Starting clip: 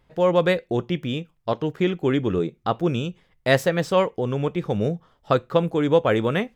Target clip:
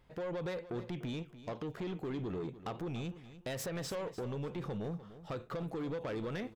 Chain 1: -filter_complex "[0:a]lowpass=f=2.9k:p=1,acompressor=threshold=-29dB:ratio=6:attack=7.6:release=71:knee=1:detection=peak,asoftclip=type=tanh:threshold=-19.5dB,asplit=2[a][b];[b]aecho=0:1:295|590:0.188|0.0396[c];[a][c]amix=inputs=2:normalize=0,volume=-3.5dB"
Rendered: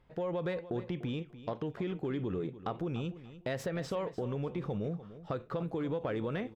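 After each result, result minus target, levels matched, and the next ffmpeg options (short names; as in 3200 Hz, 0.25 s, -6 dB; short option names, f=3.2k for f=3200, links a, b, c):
soft clip: distortion -14 dB; 4000 Hz band -4.0 dB
-filter_complex "[0:a]lowpass=f=2.9k:p=1,acompressor=threshold=-29dB:ratio=6:attack=7.6:release=71:knee=1:detection=peak,asoftclip=type=tanh:threshold=-30.5dB,asplit=2[a][b];[b]aecho=0:1:295|590:0.188|0.0396[c];[a][c]amix=inputs=2:normalize=0,volume=-3.5dB"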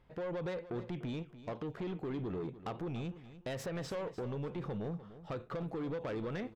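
4000 Hz band -3.0 dB
-filter_complex "[0:a]acompressor=threshold=-29dB:ratio=6:attack=7.6:release=71:knee=1:detection=peak,asoftclip=type=tanh:threshold=-30.5dB,asplit=2[a][b];[b]aecho=0:1:295|590:0.188|0.0396[c];[a][c]amix=inputs=2:normalize=0,volume=-3.5dB"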